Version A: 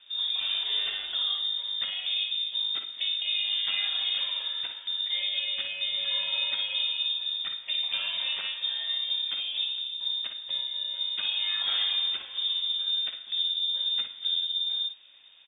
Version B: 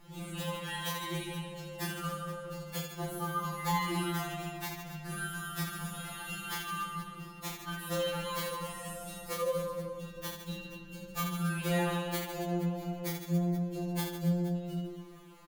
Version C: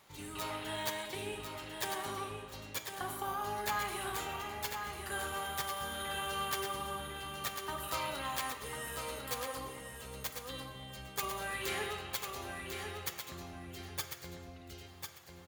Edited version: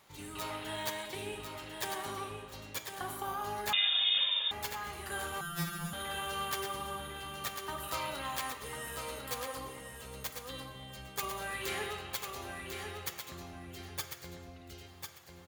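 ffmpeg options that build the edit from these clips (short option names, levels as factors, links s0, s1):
-filter_complex "[2:a]asplit=3[s0][s1][s2];[s0]atrim=end=3.732[s3];[0:a]atrim=start=3.728:end=4.512[s4];[s1]atrim=start=4.508:end=5.412[s5];[1:a]atrim=start=5.408:end=5.932[s6];[s2]atrim=start=5.928[s7];[s3][s4]acrossfade=d=0.004:c1=hsin:c2=hsin[s8];[s8][s5]acrossfade=d=0.004:c1=hsin:c2=hsin[s9];[s9][s6]acrossfade=d=0.004:c1=hsin:c2=hsin[s10];[s10][s7]acrossfade=d=0.004:c1=hsin:c2=hsin"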